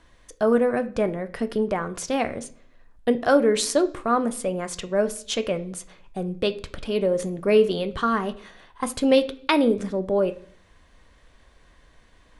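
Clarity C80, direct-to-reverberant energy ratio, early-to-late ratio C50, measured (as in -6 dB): 21.0 dB, 9.0 dB, 17.0 dB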